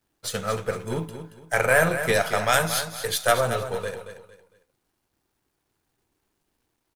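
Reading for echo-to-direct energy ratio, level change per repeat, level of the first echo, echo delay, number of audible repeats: -9.5 dB, -10.0 dB, -10.0 dB, 228 ms, 3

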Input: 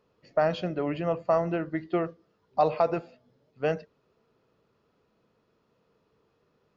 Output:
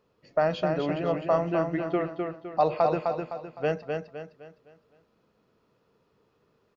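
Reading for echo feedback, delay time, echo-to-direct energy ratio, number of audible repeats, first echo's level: 39%, 256 ms, -4.0 dB, 4, -4.5 dB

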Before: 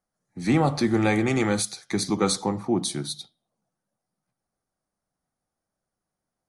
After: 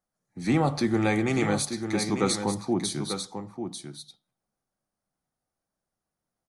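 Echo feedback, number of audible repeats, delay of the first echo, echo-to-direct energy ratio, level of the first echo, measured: no regular repeats, 1, 894 ms, -8.0 dB, -8.0 dB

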